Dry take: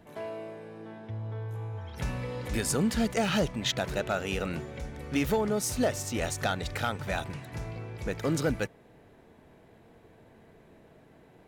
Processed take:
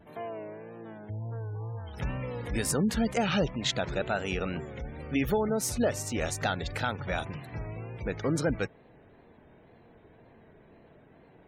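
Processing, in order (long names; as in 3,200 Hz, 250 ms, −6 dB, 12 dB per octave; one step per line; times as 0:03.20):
tape wow and flutter 78 cents
gate on every frequency bin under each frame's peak −30 dB strong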